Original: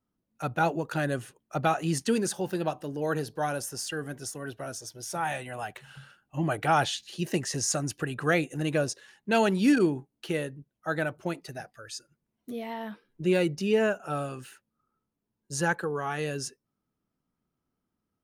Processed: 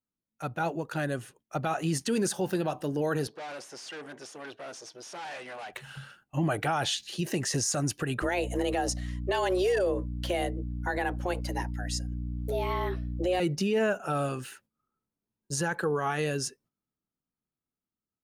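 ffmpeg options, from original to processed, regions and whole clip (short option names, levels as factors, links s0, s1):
-filter_complex "[0:a]asettb=1/sr,asplit=3[s0][s1][s2];[s0]atrim=end=3.274[s3];[s1]atrim=start=3.27:end=5.73,asetpts=PTS-STARTPTS,afade=t=in:d=0.004:c=qsin,afade=t=out:st=2.456:d=0.004:c=qsin,deesser=0.7,aeval=exprs='(tanh(126*val(0)+0.35)-tanh(0.35))/126':c=same,highpass=300,lowpass=5500[s4];[s2]atrim=start=5.726[s5];[s3][s4]acrossfade=d=0.004:c1=hsin:c2=qsin[s6];[s6][s5]acrossfade=d=0.004:c1=qsin:c2=hsin,asettb=1/sr,asplit=3[s7][s8][s9];[s7]atrim=end=8.224[s10];[s8]atrim=start=8.22:end=13.4,asetpts=PTS-STARTPTS,afade=t=in:d=0.004:c=qsin,afade=t=out:st=5.176:d=0.004:c=qsin,afreqshift=180,aeval=exprs='val(0)+0.0141*(sin(2*PI*60*n/s)+sin(2*PI*2*60*n/s)/2+sin(2*PI*3*60*n/s)/3+sin(2*PI*4*60*n/s)/4+sin(2*PI*5*60*n/s)/5)':c=same[s11];[s9]atrim=start=13.396[s12];[s10][s11]acrossfade=d=0.004:c1=hsin:c2=qsin[s13];[s13][s12]acrossfade=d=0.004:c1=qsin:c2=hsin,dynaudnorm=f=300:g=13:m=2.51,alimiter=limit=0.15:level=0:latency=1:release=56,agate=range=0.316:threshold=0.00158:ratio=16:detection=peak,volume=0.708"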